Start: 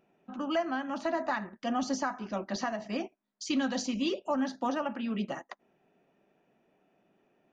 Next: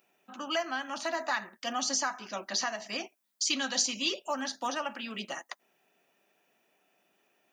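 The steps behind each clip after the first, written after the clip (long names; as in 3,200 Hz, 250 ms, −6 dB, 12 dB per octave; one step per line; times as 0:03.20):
spectral tilt +4.5 dB per octave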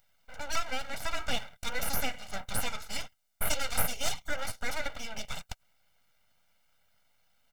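full-wave rectification
comb filter 1.4 ms, depth 75%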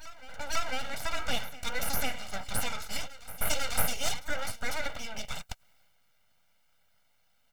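transient designer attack +1 dB, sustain +5 dB
backwards echo 498 ms −16.5 dB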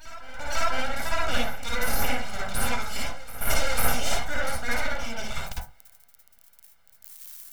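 spike at every zero crossing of −23.5 dBFS
convolution reverb RT60 0.30 s, pre-delay 47 ms, DRR −6 dB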